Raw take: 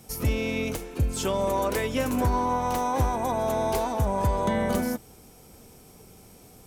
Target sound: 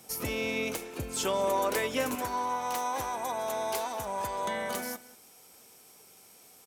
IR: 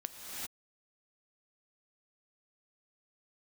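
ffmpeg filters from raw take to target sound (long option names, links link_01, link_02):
-filter_complex "[0:a]asetnsamples=nb_out_samples=441:pad=0,asendcmd='2.15 highpass f 1300',highpass=frequency=480:poles=1,asplit=2[link_01][link_02];[link_02]adelay=186.6,volume=-18dB,highshelf=frequency=4000:gain=-4.2[link_03];[link_01][link_03]amix=inputs=2:normalize=0"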